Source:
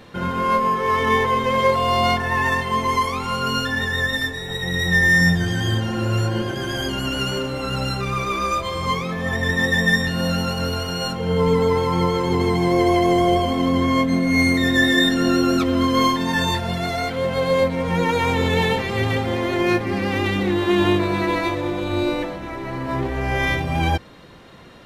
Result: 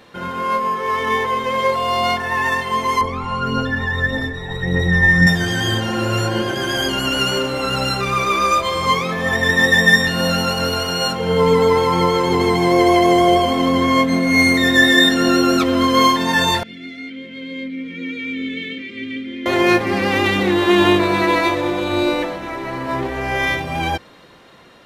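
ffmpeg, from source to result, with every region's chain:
-filter_complex "[0:a]asettb=1/sr,asplit=3[s0][s1][s2];[s0]atrim=end=3.014[s3];[s1]atrim=start=3.01:end=5.27,asetpts=PTS-STARTPTS,afade=t=in:d=0.004:c=qsin,afade=t=out:st=2.256:d=0.004:c=qsin,lowpass=f=1100:p=1,aphaser=in_gain=1:out_gain=1:delay=1.2:decay=0.43:speed=1.7:type=triangular,lowshelf=f=110:g=8[s4];[s2]atrim=start=5.266[s5];[s3][s4]acrossfade=d=0.004:c1=hsin:c2=qsin[s6];[s6][s5]acrossfade=d=0.004:c1=qsin:c2=hsin,asettb=1/sr,asplit=3[s7][s8][s9];[s7]atrim=end=16.634[s10];[s8]atrim=start=16.63:end=19.46,asetpts=PTS-STARTPTS,afade=t=in:d=0.004:c=qsin,afade=t=out:st=2.826:d=0.004:c=qsin,asplit=3[s11][s12][s13];[s11]bandpass=f=270:t=q:w=8,volume=1[s14];[s12]bandpass=f=2290:t=q:w=8,volume=0.501[s15];[s13]bandpass=f=3010:t=q:w=8,volume=0.355[s16];[s14][s15][s16]amix=inputs=3:normalize=0,bandreject=f=780:w=6.2[s17];[s9]atrim=start=19.456[s18];[s10][s17]acrossfade=d=0.004:c1=hsin:c2=qsin[s19];[s19][s18]acrossfade=d=0.004:c1=qsin:c2=hsin,lowshelf=f=200:g=-10.5,dynaudnorm=f=940:g=7:m=3.76"

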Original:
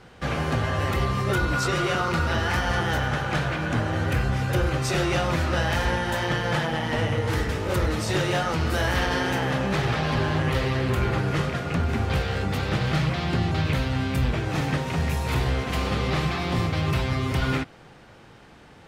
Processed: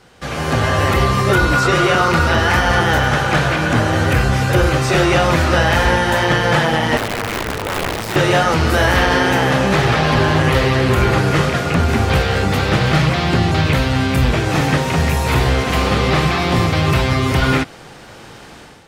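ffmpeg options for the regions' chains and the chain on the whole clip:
-filter_complex "[0:a]asettb=1/sr,asplit=3[s0][s1][s2];[s0]atrim=end=6.974[s3];[s1]atrim=start=6.97:end=8.16,asetpts=PTS-STARTPTS,afade=t=in:d=0.004:c=qsin,afade=t=out:st=1.186:d=0.004:c=qsin,aeval=exprs='(tanh(11.2*val(0)+0.7)-tanh(0.7))/11.2':c=same,tremolo=f=110:d=0.333,aeval=exprs='(mod(15.8*val(0)+1,2)-1)/15.8':c=same[s4];[s2]atrim=start=8.156[s5];[s3][s4]acrossfade=d=0.004:c1=hsin:c2=qsin[s6];[s6][s5]acrossfade=d=0.004:c1=qsin:c2=hsin,dynaudnorm=f=310:g=3:m=3.76,bass=f=250:g=-3,treble=f=4000:g=7,acrossover=split=3000[s7][s8];[s8]acompressor=threshold=0.0355:ratio=4:attack=1:release=60[s9];[s7][s9]amix=inputs=2:normalize=0,volume=1.12"

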